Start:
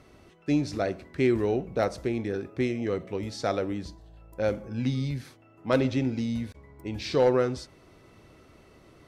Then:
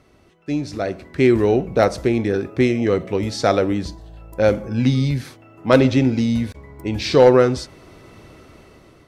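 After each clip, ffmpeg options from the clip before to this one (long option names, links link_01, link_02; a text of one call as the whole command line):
ffmpeg -i in.wav -af "dynaudnorm=framelen=410:gausssize=5:maxgain=12.5dB" out.wav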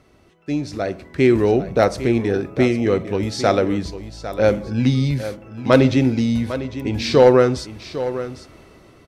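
ffmpeg -i in.wav -af "aecho=1:1:802:0.237" out.wav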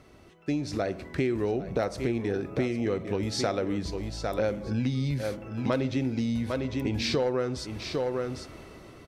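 ffmpeg -i in.wav -af "acompressor=threshold=-26dB:ratio=5" out.wav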